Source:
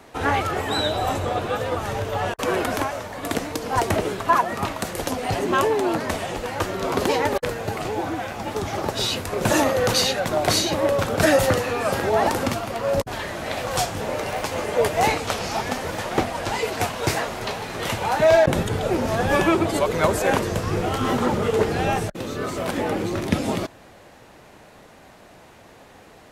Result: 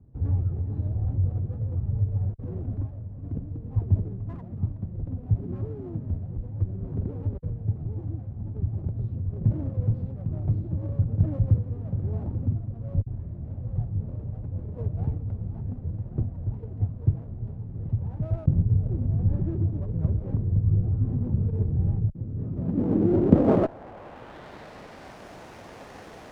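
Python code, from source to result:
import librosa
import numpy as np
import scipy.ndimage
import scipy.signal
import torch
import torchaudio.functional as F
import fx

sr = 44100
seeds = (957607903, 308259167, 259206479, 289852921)

y = fx.filter_sweep_lowpass(x, sr, from_hz=110.0, to_hz=6200.0, start_s=22.33, end_s=25.25, q=1.4)
y = fx.running_max(y, sr, window=9)
y = y * 10.0 ** (4.0 / 20.0)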